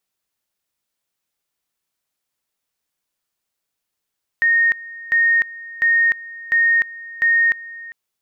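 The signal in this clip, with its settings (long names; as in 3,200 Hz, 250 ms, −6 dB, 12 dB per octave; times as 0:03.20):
tone at two levels in turn 1,850 Hz −12 dBFS, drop 19.5 dB, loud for 0.30 s, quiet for 0.40 s, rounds 5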